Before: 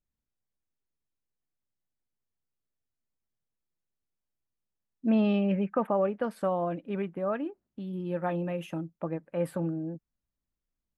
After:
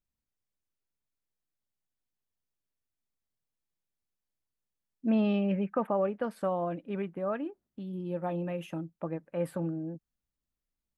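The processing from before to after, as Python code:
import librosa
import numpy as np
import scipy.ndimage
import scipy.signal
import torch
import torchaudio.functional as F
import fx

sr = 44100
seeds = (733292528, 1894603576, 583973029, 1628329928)

y = fx.peak_eq(x, sr, hz=1700.0, db=-8.0, octaves=1.0, at=(7.83, 8.38))
y = F.gain(torch.from_numpy(y), -2.0).numpy()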